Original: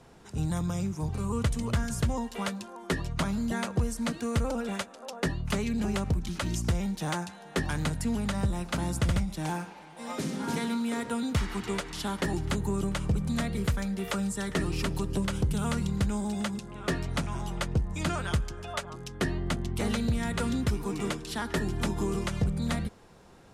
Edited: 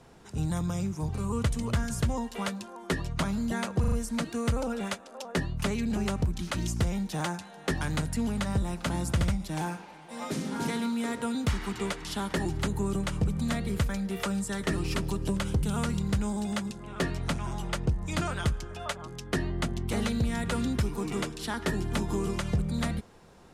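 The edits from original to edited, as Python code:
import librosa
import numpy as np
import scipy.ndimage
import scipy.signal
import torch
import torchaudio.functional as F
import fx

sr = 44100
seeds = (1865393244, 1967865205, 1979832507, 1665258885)

y = fx.edit(x, sr, fx.stutter(start_s=3.8, slice_s=0.04, count=4), tone=tone)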